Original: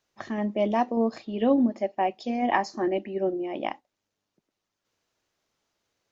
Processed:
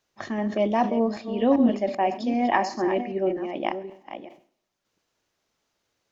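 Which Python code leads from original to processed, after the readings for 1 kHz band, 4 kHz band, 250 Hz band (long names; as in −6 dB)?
+2.5 dB, +2.5 dB, +2.5 dB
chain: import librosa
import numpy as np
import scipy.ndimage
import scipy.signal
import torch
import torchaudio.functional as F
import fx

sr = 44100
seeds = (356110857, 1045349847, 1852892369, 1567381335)

y = fx.reverse_delay(x, sr, ms=390, wet_db=-10.0)
y = fx.rev_schroeder(y, sr, rt60_s=0.76, comb_ms=26, drr_db=18.5)
y = fx.sustainer(y, sr, db_per_s=140.0)
y = y * 10.0 ** (1.5 / 20.0)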